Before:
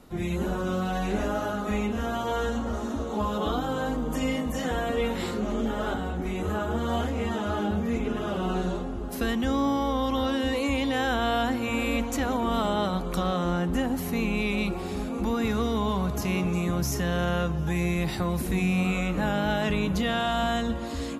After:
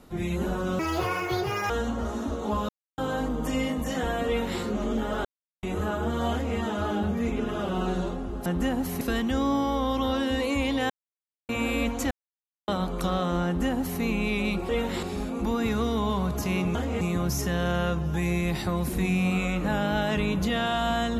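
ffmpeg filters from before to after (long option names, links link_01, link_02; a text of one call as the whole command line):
ffmpeg -i in.wav -filter_complex "[0:a]asplit=17[link_01][link_02][link_03][link_04][link_05][link_06][link_07][link_08][link_09][link_10][link_11][link_12][link_13][link_14][link_15][link_16][link_17];[link_01]atrim=end=0.794[link_18];[link_02]atrim=start=0.79:end=2.38,asetpts=PTS-STARTPTS,asetrate=77175,aresample=44100[link_19];[link_03]atrim=start=2.376:end=3.37,asetpts=PTS-STARTPTS,afade=type=out:start_time=0.99:duration=0.004:curve=hsin[link_20];[link_04]atrim=start=3.37:end=3.66,asetpts=PTS-STARTPTS,volume=0[link_21];[link_05]atrim=start=3.66:end=5.93,asetpts=PTS-STARTPTS,afade=type=in:duration=0.004:curve=hsin,afade=type=out:start_time=2.266:duration=0.004:curve=hsin[link_22];[link_06]atrim=start=5.93:end=6.31,asetpts=PTS-STARTPTS,volume=0[link_23];[link_07]atrim=start=6.31:end=9.142,asetpts=PTS-STARTPTS,afade=type=in:duration=0.004:curve=hsin[link_24];[link_08]atrim=start=13.588:end=14.142[link_25];[link_09]atrim=start=9.138:end=11.03,asetpts=PTS-STARTPTS,afade=type=out:start_time=1.888:duration=0.004:curve=hsin[link_26];[link_10]atrim=start=11.03:end=11.62,asetpts=PTS-STARTPTS,volume=0[link_27];[link_11]atrim=start=11.62:end=12.24,asetpts=PTS-STARTPTS,afade=type=in:duration=0.004:curve=hsin,afade=type=out:start_time=0.616:duration=0.004:curve=hsin[link_28];[link_12]atrim=start=12.24:end=12.81,asetpts=PTS-STARTPTS,volume=0[link_29];[link_13]atrim=start=12.81:end=14.822,asetpts=PTS-STARTPTS,afade=type=in:duration=0.004:curve=hsin[link_30];[link_14]atrim=start=4.948:end=5.292[link_31];[link_15]atrim=start=14.818:end=16.542[link_32];[link_16]atrim=start=6.998:end=7.262[link_33];[link_17]atrim=start=16.538[link_34];[link_18][link_19]acrossfade=duration=0.004:curve1=hsin:curve2=hsin[link_35];[link_20][link_21][link_22][link_23][link_24]concat=n=5:v=0:a=1[link_36];[link_35][link_36]acrossfade=duration=0.004:curve1=hsin:curve2=hsin[link_37];[link_37][link_25]acrossfade=duration=0.004:curve1=hsin:curve2=hsin[link_38];[link_26][link_27][link_28][link_29][link_30]concat=n=5:v=0:a=1[link_39];[link_38][link_39]acrossfade=duration=0.004:curve1=hsin:curve2=hsin[link_40];[link_40][link_31]acrossfade=duration=0.004:curve1=hsin:curve2=hsin[link_41];[link_41][link_32]acrossfade=duration=0.004:curve1=hsin:curve2=hsin[link_42];[link_42][link_33]acrossfade=duration=0.004:curve1=hsin:curve2=hsin[link_43];[link_43][link_34]acrossfade=duration=0.004:curve1=hsin:curve2=hsin" out.wav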